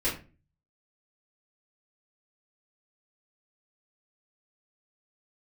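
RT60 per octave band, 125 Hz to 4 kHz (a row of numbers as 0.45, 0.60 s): 0.70, 0.50, 0.40, 0.30, 0.30, 0.25 s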